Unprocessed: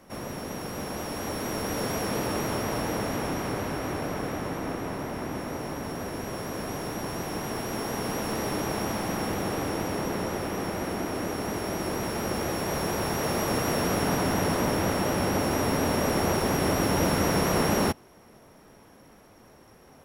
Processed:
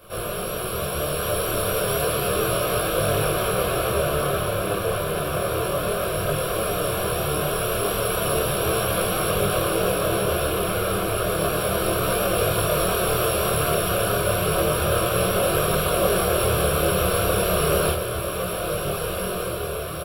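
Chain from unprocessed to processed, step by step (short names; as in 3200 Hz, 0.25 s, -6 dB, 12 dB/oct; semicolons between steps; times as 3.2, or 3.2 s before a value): in parallel at -0.5 dB: negative-ratio compressor -31 dBFS; on the sum: fixed phaser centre 1300 Hz, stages 8; companded quantiser 8-bit; high shelf 4000 Hz +6 dB; doubler 27 ms -3 dB; diffused feedback echo 1.609 s, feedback 67%, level -7.5 dB; detuned doubles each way 11 cents; gain +5.5 dB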